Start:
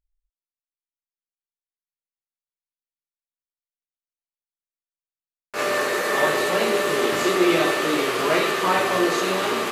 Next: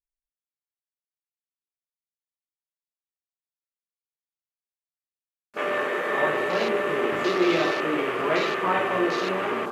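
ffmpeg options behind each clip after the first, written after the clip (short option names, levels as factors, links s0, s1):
-af "afwtdn=0.0316,volume=0.708"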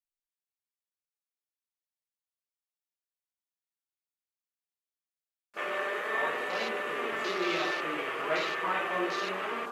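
-af "lowshelf=f=450:g=-11.5,flanger=delay=4:depth=2.3:regen=48:speed=0.3:shape=sinusoidal"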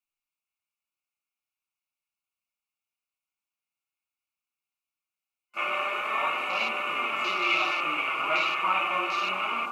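-filter_complex "[0:a]superequalizer=7b=0.355:9b=1.58:10b=2.24:11b=0.398:12b=3.55,acrossover=split=490[s0][s1];[s0]alimiter=level_in=4.22:limit=0.0631:level=0:latency=1:release=306,volume=0.237[s2];[s2][s1]amix=inputs=2:normalize=0"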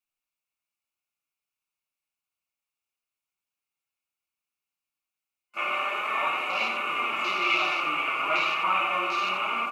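-af "aecho=1:1:87:0.422"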